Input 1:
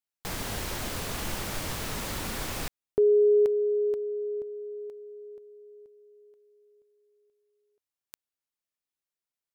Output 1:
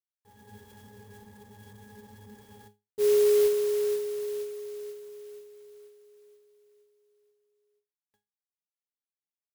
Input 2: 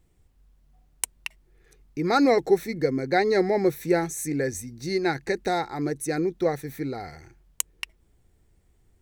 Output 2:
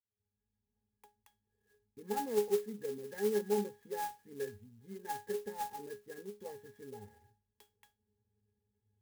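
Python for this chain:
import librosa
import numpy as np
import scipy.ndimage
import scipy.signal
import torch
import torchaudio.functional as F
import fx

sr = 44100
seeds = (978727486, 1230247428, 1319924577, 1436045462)

y = fx.fade_in_head(x, sr, length_s=0.6)
y = fx.low_shelf(y, sr, hz=110.0, db=-10.5)
y = fx.octave_resonator(y, sr, note='G#', decay_s=0.24)
y = fx.clock_jitter(y, sr, seeds[0], jitter_ms=0.058)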